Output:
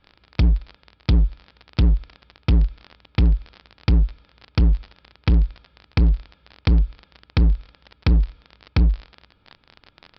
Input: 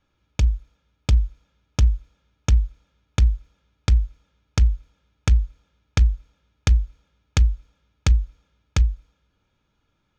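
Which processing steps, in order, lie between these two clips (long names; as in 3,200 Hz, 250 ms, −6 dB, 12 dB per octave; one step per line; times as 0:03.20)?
surface crackle 34 per second −32 dBFS
gain into a clipping stage and back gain 21 dB
downsampling to 11,025 Hz
level +8.5 dB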